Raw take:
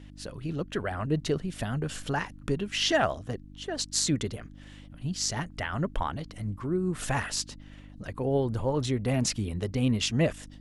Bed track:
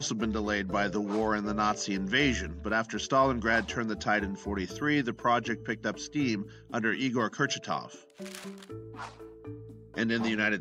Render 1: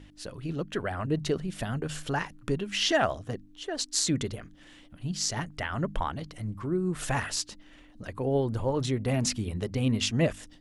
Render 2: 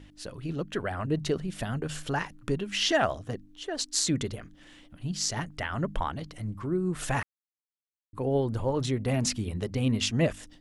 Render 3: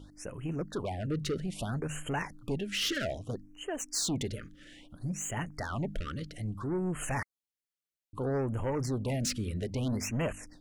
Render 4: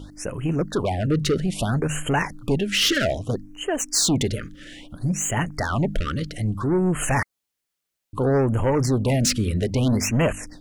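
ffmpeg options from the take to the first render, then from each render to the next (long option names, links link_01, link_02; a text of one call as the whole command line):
ffmpeg -i in.wav -af "bandreject=frequency=50:width_type=h:width=4,bandreject=frequency=100:width_type=h:width=4,bandreject=frequency=150:width_type=h:width=4,bandreject=frequency=200:width_type=h:width=4,bandreject=frequency=250:width_type=h:width=4" out.wav
ffmpeg -i in.wav -filter_complex "[0:a]asplit=3[link_01][link_02][link_03];[link_01]atrim=end=7.23,asetpts=PTS-STARTPTS,afade=type=out:start_time=7.226:duration=0.004:curve=hsin[link_04];[link_02]atrim=start=7.23:end=8.13,asetpts=PTS-STARTPTS,volume=0[link_05];[link_03]atrim=start=8.13,asetpts=PTS-STARTPTS,afade=type=in:duration=0.004:curve=hsin[link_06];[link_04][link_05][link_06]concat=n=3:v=0:a=1" out.wav
ffmpeg -i in.wav -af "asoftclip=type=tanh:threshold=-27dB,afftfilt=real='re*(1-between(b*sr/1024,790*pow(4600/790,0.5+0.5*sin(2*PI*0.61*pts/sr))/1.41,790*pow(4600/790,0.5+0.5*sin(2*PI*0.61*pts/sr))*1.41))':imag='im*(1-between(b*sr/1024,790*pow(4600/790,0.5+0.5*sin(2*PI*0.61*pts/sr))/1.41,790*pow(4600/790,0.5+0.5*sin(2*PI*0.61*pts/sr))*1.41))':win_size=1024:overlap=0.75" out.wav
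ffmpeg -i in.wav -af "volume=11.5dB" out.wav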